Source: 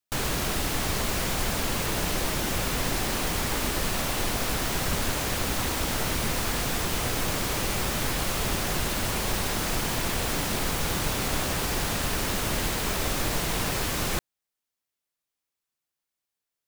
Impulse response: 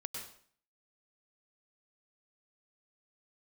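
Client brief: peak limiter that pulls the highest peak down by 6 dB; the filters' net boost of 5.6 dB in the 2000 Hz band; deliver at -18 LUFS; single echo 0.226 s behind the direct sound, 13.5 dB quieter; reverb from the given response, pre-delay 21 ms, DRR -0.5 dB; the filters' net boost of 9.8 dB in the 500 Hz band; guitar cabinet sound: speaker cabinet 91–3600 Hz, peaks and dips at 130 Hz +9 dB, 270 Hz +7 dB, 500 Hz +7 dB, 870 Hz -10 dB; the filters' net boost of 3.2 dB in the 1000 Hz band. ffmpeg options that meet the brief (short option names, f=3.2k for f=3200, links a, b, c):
-filter_complex "[0:a]equalizer=f=500:t=o:g=6,equalizer=f=1k:t=o:g=5,equalizer=f=2k:t=o:g=5.5,alimiter=limit=-16.5dB:level=0:latency=1,aecho=1:1:226:0.211,asplit=2[a][b];[1:a]atrim=start_sample=2205,adelay=21[c];[b][c]afir=irnorm=-1:irlink=0,volume=1.5dB[d];[a][d]amix=inputs=2:normalize=0,highpass=91,equalizer=f=130:t=q:w=4:g=9,equalizer=f=270:t=q:w=4:g=7,equalizer=f=500:t=q:w=4:g=7,equalizer=f=870:t=q:w=4:g=-10,lowpass=f=3.6k:w=0.5412,lowpass=f=3.6k:w=1.3066,volume=4.5dB"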